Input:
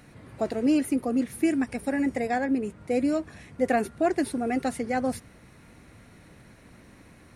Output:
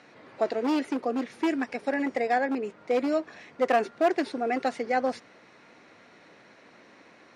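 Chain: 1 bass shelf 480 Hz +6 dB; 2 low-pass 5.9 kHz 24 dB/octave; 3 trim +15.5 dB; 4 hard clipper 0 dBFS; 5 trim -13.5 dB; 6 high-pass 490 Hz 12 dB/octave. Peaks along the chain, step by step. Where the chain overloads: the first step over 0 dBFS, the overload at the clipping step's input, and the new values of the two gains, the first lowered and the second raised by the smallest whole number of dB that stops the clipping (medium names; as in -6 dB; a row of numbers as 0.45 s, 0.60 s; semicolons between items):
-9.5 dBFS, -9.5 dBFS, +6.0 dBFS, 0.0 dBFS, -13.5 dBFS, -12.0 dBFS; step 3, 6.0 dB; step 3 +9.5 dB, step 5 -7.5 dB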